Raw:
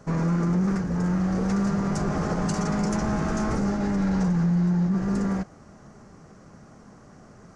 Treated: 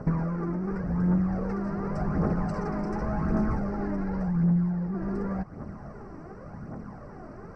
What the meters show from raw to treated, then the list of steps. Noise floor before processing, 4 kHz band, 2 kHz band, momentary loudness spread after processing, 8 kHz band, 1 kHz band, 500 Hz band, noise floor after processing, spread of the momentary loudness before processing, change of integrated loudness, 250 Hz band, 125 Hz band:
-50 dBFS, under -15 dB, -6.0 dB, 18 LU, under -20 dB, -3.5 dB, -2.5 dB, -44 dBFS, 4 LU, -4.0 dB, -4.0 dB, -3.0 dB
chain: compressor 6:1, threshold -33 dBFS, peak gain reduction 12.5 dB; phaser 0.89 Hz, delay 3.3 ms, feedback 49%; running mean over 13 samples; gain +6.5 dB

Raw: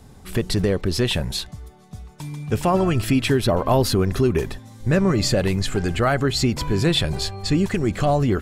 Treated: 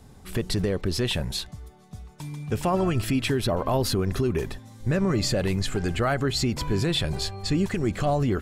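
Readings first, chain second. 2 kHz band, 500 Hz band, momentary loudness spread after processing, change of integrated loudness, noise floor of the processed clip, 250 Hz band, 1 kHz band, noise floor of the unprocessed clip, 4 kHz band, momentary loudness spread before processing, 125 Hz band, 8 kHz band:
-4.5 dB, -5.0 dB, 12 LU, -5.0 dB, -49 dBFS, -5.0 dB, -5.0 dB, -46 dBFS, -4.0 dB, 9 LU, -4.5 dB, -4.0 dB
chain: limiter -11.5 dBFS, peak gain reduction 4 dB; gain -3.5 dB

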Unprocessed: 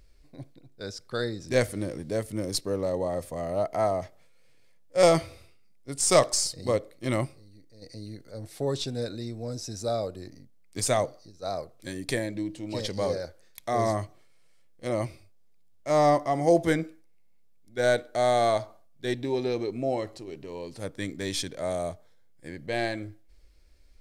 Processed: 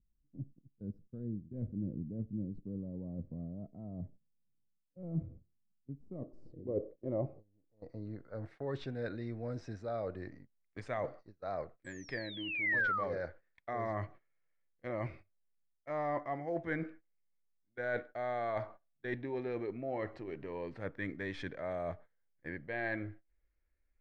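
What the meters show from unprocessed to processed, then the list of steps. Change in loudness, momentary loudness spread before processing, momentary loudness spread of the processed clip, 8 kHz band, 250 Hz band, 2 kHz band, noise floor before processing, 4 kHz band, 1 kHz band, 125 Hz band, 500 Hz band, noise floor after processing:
-11.5 dB, 19 LU, 12 LU, under -30 dB, -9.0 dB, -3.0 dB, -55 dBFS, -18.0 dB, -12.0 dB, -8.0 dB, -13.5 dB, -78 dBFS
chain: painted sound fall, 11.84–13.04, 1100–8100 Hz -26 dBFS; reverse; compressor 5:1, threshold -33 dBFS, peak gain reduction 17 dB; reverse; gate -48 dBFS, range -18 dB; low-pass sweep 210 Hz -> 1800 Hz, 5.94–8.61; gain -3 dB

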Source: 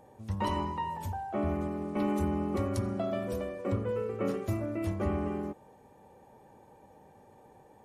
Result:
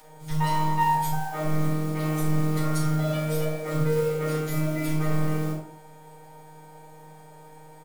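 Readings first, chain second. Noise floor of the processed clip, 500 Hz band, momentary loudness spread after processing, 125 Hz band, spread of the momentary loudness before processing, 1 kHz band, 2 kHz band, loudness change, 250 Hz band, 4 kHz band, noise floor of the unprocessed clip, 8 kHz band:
-48 dBFS, +4.0 dB, 6 LU, +10.0 dB, 5 LU, +8.5 dB, +10.0 dB, +6.5 dB, +4.5 dB, +9.0 dB, -58 dBFS, +14.0 dB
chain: robotiser 155 Hz; flange 1.4 Hz, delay 9.7 ms, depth 8 ms, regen +84%; limiter -29 dBFS, peak gain reduction 7 dB; high shelf 3000 Hz +11 dB; modulation noise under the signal 20 dB; low shelf 400 Hz -8 dB; doubler 44 ms -13 dB; shoebox room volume 300 m³, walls furnished, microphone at 7 m; gain +4 dB

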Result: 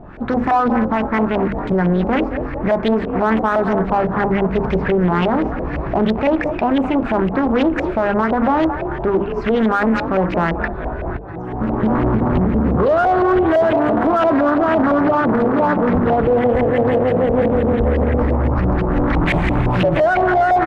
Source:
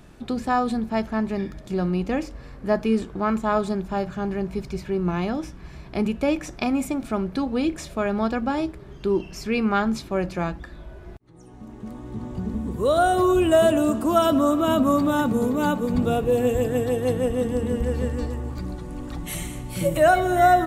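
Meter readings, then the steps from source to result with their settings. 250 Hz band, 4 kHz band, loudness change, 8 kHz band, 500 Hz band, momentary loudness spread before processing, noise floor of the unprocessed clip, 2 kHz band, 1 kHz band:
+6.5 dB, +1.5 dB, +6.5 dB, under -10 dB, +6.5 dB, 14 LU, -43 dBFS, +8.0 dB, +7.0 dB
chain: recorder AGC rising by 8.1 dB/s; notches 50/100/150/200/250/300/350/400/450/500 Hz; on a send: frequency-shifting echo 0.221 s, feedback 61%, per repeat +38 Hz, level -14.5 dB; on the sum: LFO low-pass saw up 5.9 Hz 610–2300 Hz; in parallel at -6.5 dB: soft clip -21.5 dBFS, distortion -6 dB; on the sum: maximiser +14.5 dB; Doppler distortion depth 0.52 ms; gain -7.5 dB

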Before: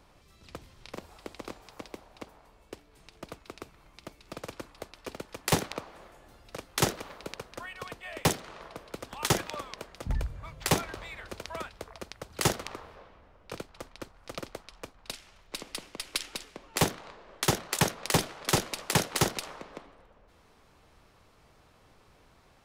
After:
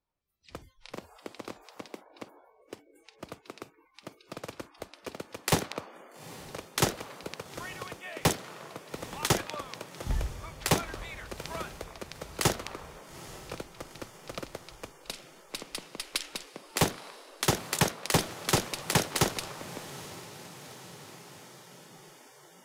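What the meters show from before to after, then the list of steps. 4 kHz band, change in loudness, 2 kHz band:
0.0 dB, -0.5 dB, 0.0 dB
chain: diffused feedback echo 0.862 s, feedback 66%, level -16 dB; spectral noise reduction 29 dB

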